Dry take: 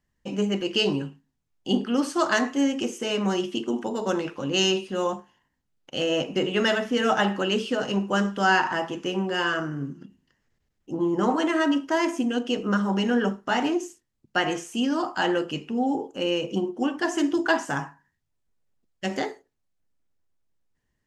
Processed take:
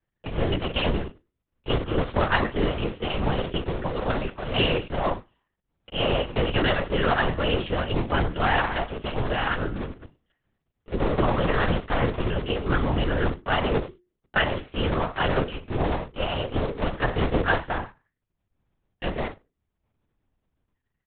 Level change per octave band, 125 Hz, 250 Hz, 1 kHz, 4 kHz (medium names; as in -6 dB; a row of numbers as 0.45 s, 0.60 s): +7.5 dB, -5.0 dB, 0.0 dB, -2.0 dB